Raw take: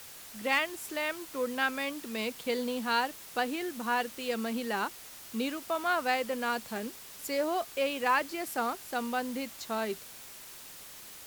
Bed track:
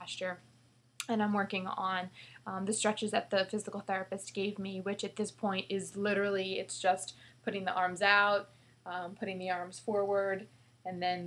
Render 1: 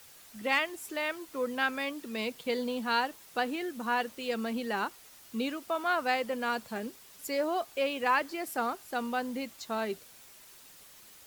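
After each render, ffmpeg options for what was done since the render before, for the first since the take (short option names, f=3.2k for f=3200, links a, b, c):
-af "afftdn=nr=7:nf=-48"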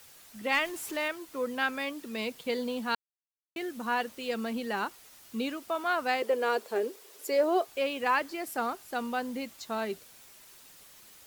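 -filter_complex "[0:a]asettb=1/sr,asplit=3[a][b][c];[a]atrim=end=0.544[d];[b]atrim=start=0.54:end=1.08,asetpts=PTS-STARTPTS,afade=t=in:d=0.004:c=qsin,afade=t=out:st=0.536:d=0.004:c=qsin,aeval=exprs='val(0)+0.5*0.00944*sgn(val(0))':c=same[e];[c]atrim=start=1.076[f];[d][e]acrossfade=d=0.004:c1=hsin:c2=qsin[g];[g][f]acrossfade=d=0.004:c1=qsin:c2=hsin,asettb=1/sr,asplit=3[h][i][j];[h]atrim=end=6.224[k];[i]atrim=start=6.22:end=7.67,asetpts=PTS-STARTPTS,afade=t=in:d=0.004:c=qsin,afade=t=out:st=1.446:d=0.004:c=qsin,highpass=f=410:t=q:w=4.6[l];[j]atrim=start=7.666[m];[k][l]acrossfade=d=0.004:c1=hsin:c2=qsin[n];[n][m]acrossfade=d=0.004:c1=qsin:c2=hsin,asplit=3[o][p][q];[o]atrim=end=2.95,asetpts=PTS-STARTPTS,afade=t=out:st=2.946:d=0.004:c=hsin[r];[p]atrim=start=2.95:end=3.56,asetpts=PTS-STARTPTS,volume=0[s];[q]atrim=start=3.56,asetpts=PTS-STARTPTS,afade=t=in:d=0.004:c=hsin[t];[r][s][t]concat=n=3:v=0:a=1"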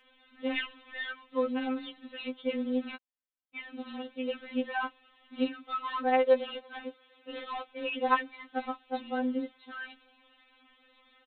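-af "aresample=8000,acrusher=bits=4:mode=log:mix=0:aa=0.000001,aresample=44100,afftfilt=real='re*3.46*eq(mod(b,12),0)':imag='im*3.46*eq(mod(b,12),0)':win_size=2048:overlap=0.75"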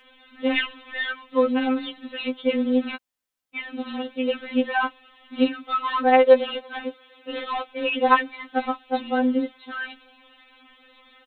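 -af "volume=9.5dB,alimiter=limit=-3dB:level=0:latency=1"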